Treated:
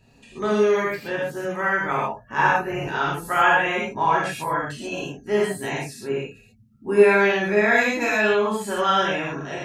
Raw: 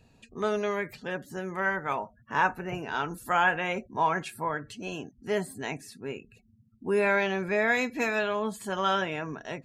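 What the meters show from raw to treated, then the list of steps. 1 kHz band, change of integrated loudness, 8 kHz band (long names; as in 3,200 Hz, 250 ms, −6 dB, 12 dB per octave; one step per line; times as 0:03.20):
+7.0 dB, +7.5 dB, +7.5 dB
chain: reverb whose tail is shaped and stops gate 160 ms flat, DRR −6.5 dB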